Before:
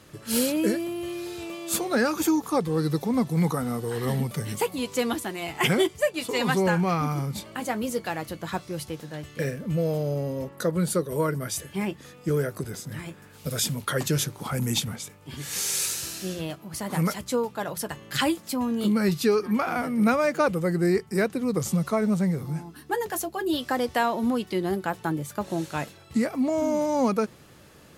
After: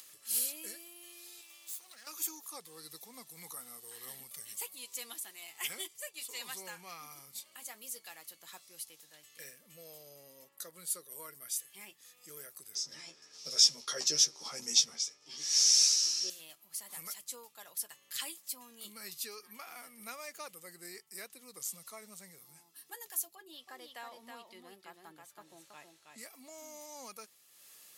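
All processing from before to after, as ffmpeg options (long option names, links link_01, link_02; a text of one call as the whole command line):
ffmpeg -i in.wav -filter_complex "[0:a]asettb=1/sr,asplit=3[link_01][link_02][link_03];[link_01]atrim=end=1.414[link_04];[link_02]atrim=start=1.41:end=2.07,asetpts=PTS-STARTPTS,afade=type=in:duration=0.004:curve=qsin,afade=type=out:start_time=0.656:duration=0.004:curve=qsin,equalizer=frequency=420:width_type=o:width=0.41:gain=-11.5,acompressor=threshold=-30dB:ratio=5:attack=3.2:release=140:knee=1:detection=peak,aeval=exprs='max(val(0),0)':channel_layout=same[link_05];[link_03]atrim=start=2.066[link_06];[link_04][link_05]acrossfade=duration=0.004:curve1=hsin:curve2=qsin[link_07];[link_07][link_06]acrossfade=duration=0.004:curve1=qsin:curve2=hsin,asettb=1/sr,asplit=3[link_08][link_09][link_10];[link_08]atrim=end=12.754[link_11];[link_09]atrim=start=12.75:end=16.3,asetpts=PTS-STARTPTS,afade=type=in:duration=0.004:curve=qsin,afade=type=out:start_time=3.546:duration=0.004:curve=qsin,lowpass=frequency=5500:width_type=q:width=9.1,equalizer=frequency=410:width_type=o:width=2.7:gain=12,asplit=2[link_12][link_13];[link_13]adelay=13,volume=-4dB[link_14];[link_12][link_14]amix=inputs=2:normalize=0,atrim=end_sample=156555[link_15];[link_10]atrim=start=16.296[link_16];[link_11][link_15]acrossfade=duration=0.004:curve1=hsin:curve2=qsin[link_17];[link_17][link_16]acrossfade=duration=0.004:curve1=qsin:curve2=hsin,asettb=1/sr,asplit=3[link_18][link_19][link_20];[link_18]atrim=end=23.354[link_21];[link_19]atrim=start=23.35:end=26.18,asetpts=PTS-STARTPTS,afade=type=in:duration=0.004:curve=qsin,afade=type=out:start_time=2.826:duration=0.004:curve=qsin,lowpass=frequency=1900:poles=1,aecho=1:1:322:0.596,atrim=end_sample=124803[link_22];[link_20]atrim=start=26.176[link_23];[link_21][link_22]acrossfade=duration=0.004:curve1=hsin:curve2=qsin[link_24];[link_24][link_23]acrossfade=duration=0.004:curve1=qsin:curve2=hsin,bandreject=frequency=1500:width=11,acompressor=mode=upward:threshold=-34dB:ratio=2.5,aderivative,volume=-5dB" out.wav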